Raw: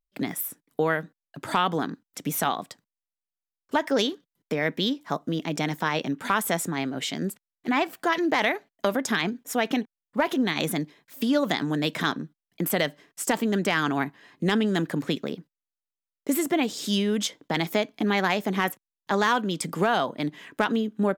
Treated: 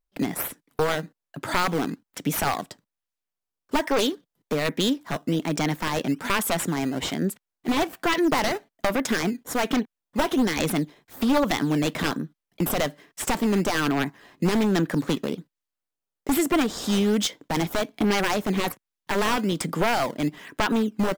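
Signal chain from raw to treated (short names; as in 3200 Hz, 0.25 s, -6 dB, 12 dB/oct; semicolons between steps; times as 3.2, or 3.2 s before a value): one-sided fold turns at -20.5 dBFS; in parallel at -5 dB: decimation with a swept rate 11×, swing 160% 1.2 Hz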